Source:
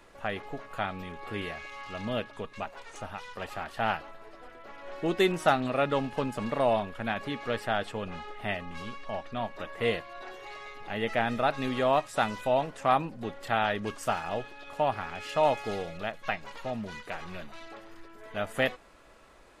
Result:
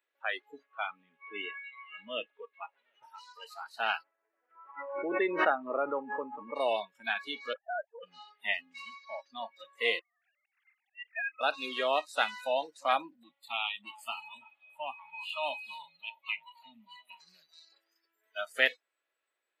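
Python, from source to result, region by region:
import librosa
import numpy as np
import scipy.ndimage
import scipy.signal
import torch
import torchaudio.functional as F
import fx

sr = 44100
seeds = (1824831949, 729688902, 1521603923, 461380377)

y = fx.chain(x, sr, fx.lowpass(hz=3400.0, slope=24),
    fx.echo_single(ms=742, db=-19.0), at=(0.63, 3.03))
y = fx.chain(y, sr, fx.bessel_lowpass(hz=1500.0, order=4),
    fx.pre_swell(db_per_s=32.0), at=(4.03, 6.56))
y = fx.chain(y, sr, fx.sine_speech(),
    fx.lowpass(hz=1600.0, slope=24),
    fx.level_steps(step_db=10), at=(7.53, 8.03))
y = fx.chain(y, sr, fx.sine_speech(),
    fx.highpass(hz=1400.0, slope=12),
    fx.auto_swell(attack_ms=169.0), at=(9.99, 11.41))
y = fx.chain(y, sr, fx.dynamic_eq(hz=780.0, q=2.0, threshold_db=-40.0, ratio=4.0, max_db=-6),
    fx.fixed_phaser(hz=1600.0, stages=6),
    fx.echo_filtered(ms=333, feedback_pct=44, hz=2300.0, wet_db=-8), at=(13.23, 17.2))
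y = scipy.signal.sosfilt(scipy.signal.butter(4, 330.0, 'highpass', fs=sr, output='sos'), y)
y = fx.noise_reduce_blind(y, sr, reduce_db=28)
y = fx.band_shelf(y, sr, hz=2500.0, db=9.0, octaves=1.7)
y = y * librosa.db_to_amplitude(-4.5)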